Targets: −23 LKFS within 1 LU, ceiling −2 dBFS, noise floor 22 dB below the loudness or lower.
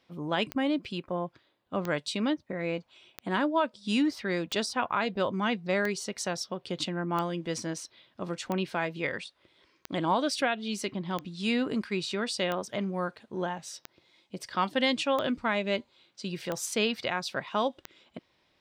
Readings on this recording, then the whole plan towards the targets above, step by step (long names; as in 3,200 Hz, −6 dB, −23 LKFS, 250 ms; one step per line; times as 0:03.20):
number of clicks 14; integrated loudness −31.0 LKFS; sample peak −15.0 dBFS; target loudness −23.0 LKFS
→ click removal
level +8 dB